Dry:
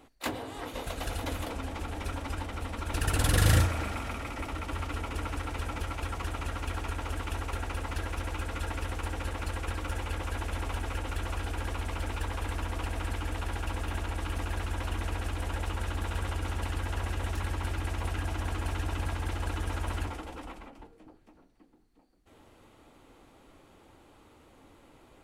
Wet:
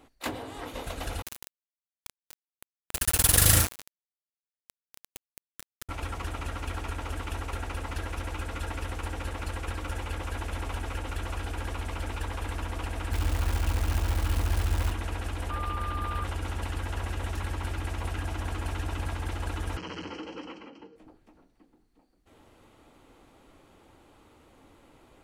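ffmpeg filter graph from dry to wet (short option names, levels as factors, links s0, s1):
-filter_complex "[0:a]asettb=1/sr,asplit=3[s0][s1][s2];[s0]atrim=end=1.224[s3];[s1]atrim=start=1.22:end=5.89,asetpts=PTS-STARTPTS,afade=t=in:d=0.004:c=qsin,afade=t=out:st=4.666:d=0.004:c=qsin,aemphasis=mode=production:type=75fm,aeval=exprs='val(0)*gte(abs(val(0)),0.0794)':c=same[s4];[s2]atrim=start=5.886[s5];[s3][s4]acrossfade=d=0.004:c1=hsin:c2=qsin[s6];[s6][s5]acrossfade=d=0.004:c1=qsin:c2=hsin,asettb=1/sr,asplit=3[s7][s8][s9];[s7]atrim=end=13.124[s10];[s8]atrim=start=13.12:end=14.92,asetpts=PTS-STARTPTS,afade=t=in:d=0.004:c=qsin,afade=t=out:st=1.796:d=0.004:c=qsin,equalizer=f=68:t=o:w=2.4:g=7.5,asplit=2[s11][s12];[s12]adelay=26,volume=0.251[s13];[s11][s13]amix=inputs=2:normalize=0,atrim=end_sample=79380,acrusher=bits=7:dc=4:mix=0:aa=0.000001[s14];[s9]atrim=start=14.916[s15];[s10][s14]acrossfade=d=0.004:c1=hsin:c2=qsin[s16];[s16][s15]acrossfade=d=0.004:c1=qsin:c2=hsin,asettb=1/sr,asplit=3[s17][s18][s19];[s17]atrim=end=15.504[s20];[s18]atrim=start=15.5:end=16.24,asetpts=PTS-STARTPTS,afade=t=in:d=0.004:c=qsin,afade=t=out:st=0.736:d=0.004:c=qsin,equalizer=f=6700:t=o:w=0.81:g=-7.5,aeval=exprs='val(0)+0.02*sin(2*PI*1200*n/s)':c=same[s21];[s19]atrim=start=16.236[s22];[s20][s21]acrossfade=d=0.004:c1=hsin:c2=qsin[s23];[s23][s22]acrossfade=d=0.004:c1=qsin:c2=hsin,asettb=1/sr,asplit=3[s24][s25][s26];[s24]atrim=end=19.774[s27];[s25]atrim=start=19.77:end=20.96,asetpts=PTS-STARTPTS,afade=t=in:d=0.004:c=qsin,afade=t=out:st=1.186:d=0.004:c=qsin,volume=44.7,asoftclip=hard,volume=0.0224,asuperstop=centerf=3600:order=8:qfactor=5.1,highpass=170,equalizer=f=180:t=q:w=4:g=7,equalizer=f=320:t=q:w=4:g=6,equalizer=f=480:t=q:w=4:g=7,equalizer=f=690:t=q:w=4:g=-8,equalizer=f=3000:t=q:w=4:g=9,equalizer=f=5600:t=q:w=4:g=6,lowpass=f=5900:w=0.5412,lowpass=f=5900:w=1.3066[s28];[s26]atrim=start=20.956[s29];[s27][s28]acrossfade=d=0.004:c1=hsin:c2=qsin[s30];[s30][s29]acrossfade=d=0.004:c1=qsin:c2=hsin"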